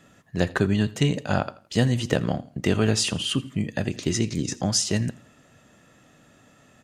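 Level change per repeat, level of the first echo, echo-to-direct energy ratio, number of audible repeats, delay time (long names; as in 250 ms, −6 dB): −9.0 dB, −21.0 dB, −20.5 dB, 2, 83 ms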